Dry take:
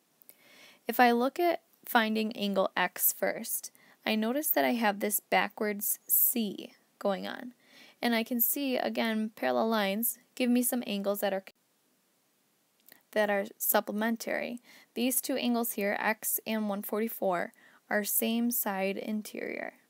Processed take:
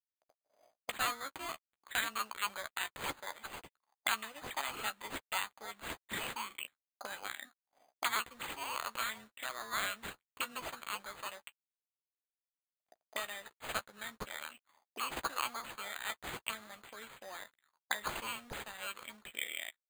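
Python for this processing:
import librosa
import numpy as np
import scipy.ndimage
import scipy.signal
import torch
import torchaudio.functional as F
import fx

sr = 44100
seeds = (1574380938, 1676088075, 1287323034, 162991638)

y = fx.peak_eq(x, sr, hz=120.0, db=6.0, octaves=1.0)
y = np.sign(y) * np.maximum(np.abs(y) - 10.0 ** (-53.0 / 20.0), 0.0)
y = fx.auto_wah(y, sr, base_hz=630.0, top_hz=4300.0, q=5.4, full_db=-30.5, direction='up')
y = fx.doubler(y, sr, ms=14.0, db=-10)
y = np.repeat(y[::8], 8)[:len(y)]
y = y * librosa.db_to_amplitude(10.0)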